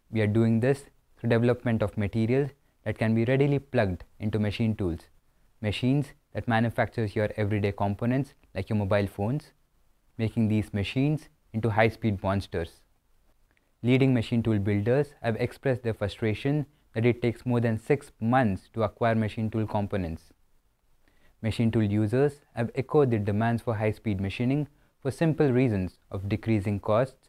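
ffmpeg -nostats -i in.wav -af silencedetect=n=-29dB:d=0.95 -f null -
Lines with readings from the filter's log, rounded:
silence_start: 12.64
silence_end: 13.84 | silence_duration: 1.20
silence_start: 20.14
silence_end: 21.44 | silence_duration: 1.30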